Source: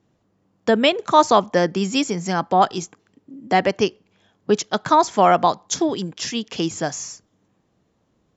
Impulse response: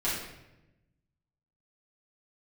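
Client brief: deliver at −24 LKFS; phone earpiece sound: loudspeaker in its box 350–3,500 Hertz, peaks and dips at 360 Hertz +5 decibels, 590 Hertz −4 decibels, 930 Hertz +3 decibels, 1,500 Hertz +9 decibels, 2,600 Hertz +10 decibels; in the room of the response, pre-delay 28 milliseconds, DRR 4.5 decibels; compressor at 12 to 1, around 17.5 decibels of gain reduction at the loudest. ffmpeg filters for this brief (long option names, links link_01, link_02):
-filter_complex "[0:a]acompressor=threshold=-27dB:ratio=12,asplit=2[link_01][link_02];[1:a]atrim=start_sample=2205,adelay=28[link_03];[link_02][link_03]afir=irnorm=-1:irlink=0,volume=-13dB[link_04];[link_01][link_04]amix=inputs=2:normalize=0,highpass=350,equalizer=frequency=360:width_type=q:width=4:gain=5,equalizer=frequency=590:width_type=q:width=4:gain=-4,equalizer=frequency=930:width_type=q:width=4:gain=3,equalizer=frequency=1500:width_type=q:width=4:gain=9,equalizer=frequency=2600:width_type=q:width=4:gain=10,lowpass=frequency=3500:width=0.5412,lowpass=frequency=3500:width=1.3066,volume=6.5dB"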